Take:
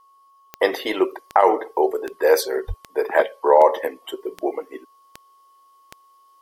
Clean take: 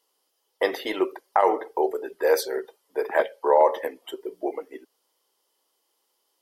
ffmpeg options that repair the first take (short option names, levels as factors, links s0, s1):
-filter_complex "[0:a]adeclick=t=4,bandreject=f=1100:w=30,asplit=3[s0][s1][s2];[s0]afade=t=out:st=2.67:d=0.02[s3];[s1]highpass=f=140:w=0.5412,highpass=f=140:w=1.3066,afade=t=in:st=2.67:d=0.02,afade=t=out:st=2.79:d=0.02[s4];[s2]afade=t=in:st=2.79:d=0.02[s5];[s3][s4][s5]amix=inputs=3:normalize=0,asetnsamples=n=441:p=0,asendcmd='0.6 volume volume -4.5dB',volume=1"